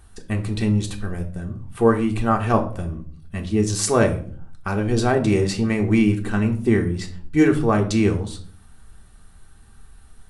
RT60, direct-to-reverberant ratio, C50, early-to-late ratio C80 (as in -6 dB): 0.50 s, 2.0 dB, 13.0 dB, 17.0 dB